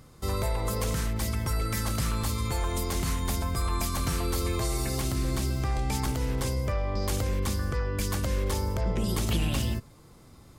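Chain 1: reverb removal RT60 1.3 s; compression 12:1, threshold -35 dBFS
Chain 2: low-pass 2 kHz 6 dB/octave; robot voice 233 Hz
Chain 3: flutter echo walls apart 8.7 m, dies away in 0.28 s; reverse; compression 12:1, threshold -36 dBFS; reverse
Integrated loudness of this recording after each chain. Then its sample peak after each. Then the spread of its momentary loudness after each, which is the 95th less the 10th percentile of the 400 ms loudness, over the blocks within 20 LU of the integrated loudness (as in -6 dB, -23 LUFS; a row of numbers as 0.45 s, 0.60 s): -40.0 LUFS, -36.5 LUFS, -41.0 LUFS; -25.5 dBFS, -16.5 dBFS, -27.5 dBFS; 1 LU, 4 LU, 1 LU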